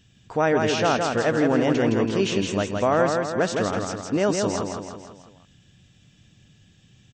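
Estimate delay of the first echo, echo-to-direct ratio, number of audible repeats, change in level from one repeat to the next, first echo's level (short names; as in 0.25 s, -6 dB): 0.165 s, -2.5 dB, 5, -5.5 dB, -4.0 dB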